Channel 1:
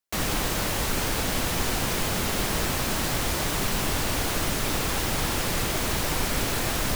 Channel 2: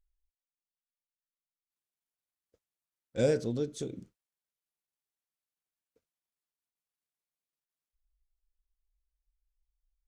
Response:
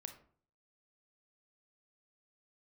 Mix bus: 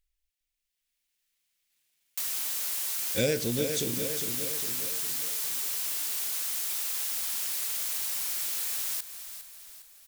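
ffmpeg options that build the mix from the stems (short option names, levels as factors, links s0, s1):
-filter_complex "[0:a]aderivative,adelay=2050,volume=1.19,asplit=2[s0][s1];[s1]volume=0.178[s2];[1:a]highshelf=f=1600:t=q:w=1.5:g=9,dynaudnorm=f=150:g=13:m=3.55,volume=0.891,asplit=2[s3][s4];[s4]volume=0.335[s5];[s2][s5]amix=inputs=2:normalize=0,aecho=0:1:407|814|1221|1628|2035|2442|2849:1|0.49|0.24|0.118|0.0576|0.0282|0.0138[s6];[s0][s3][s6]amix=inputs=3:normalize=0,acompressor=threshold=0.0282:ratio=2"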